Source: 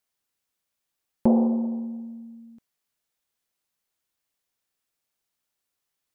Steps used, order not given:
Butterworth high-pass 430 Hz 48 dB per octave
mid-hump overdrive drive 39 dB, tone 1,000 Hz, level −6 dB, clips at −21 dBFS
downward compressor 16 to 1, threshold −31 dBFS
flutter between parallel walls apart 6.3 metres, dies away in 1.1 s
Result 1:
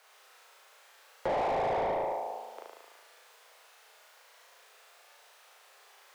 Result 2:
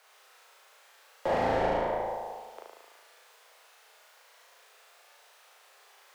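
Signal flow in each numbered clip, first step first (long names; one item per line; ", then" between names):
flutter between parallel walls, then downward compressor, then Butterworth high-pass, then mid-hump overdrive
Butterworth high-pass, then downward compressor, then mid-hump overdrive, then flutter between parallel walls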